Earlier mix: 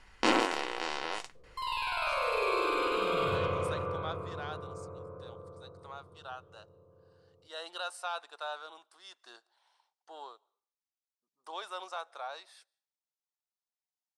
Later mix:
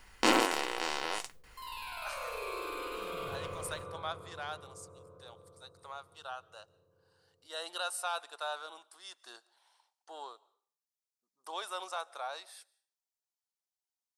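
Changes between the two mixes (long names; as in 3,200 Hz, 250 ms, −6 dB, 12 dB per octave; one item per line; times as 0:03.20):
speech: send +7.0 dB
second sound −10.0 dB
master: remove high-frequency loss of the air 67 metres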